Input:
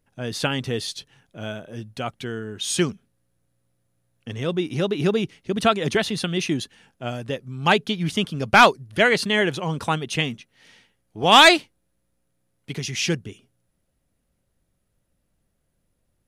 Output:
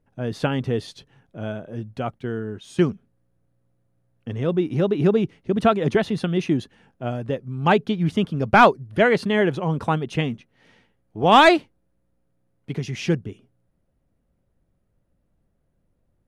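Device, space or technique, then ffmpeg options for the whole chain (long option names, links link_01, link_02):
through cloth: -filter_complex "[0:a]highshelf=frequency=2200:gain=-17,asettb=1/sr,asplit=3[link_01][link_02][link_03];[link_01]atrim=end=2.184[link_04];[link_02]atrim=start=2.18:end=2.82,asetpts=PTS-STARTPTS,afade=type=in:duration=0.004:curve=qsin,afade=type=out:start_time=0.636:duration=0.004:curve=qsin,agate=range=-8dB:threshold=-37dB:ratio=16:detection=peak[link_05];[link_03]atrim=start=2.816[link_06];[link_04][link_05]acrossfade=duration=0.004:curve1=hsin:curve2=qsin[link_07];[link_07][link_06]acrossfade=duration=0.004:curve1=qsin:curve2=hsin,volume=3.5dB"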